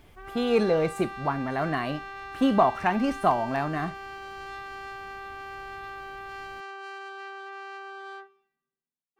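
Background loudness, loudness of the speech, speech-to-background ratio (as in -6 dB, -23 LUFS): -39.5 LUFS, -26.5 LUFS, 13.0 dB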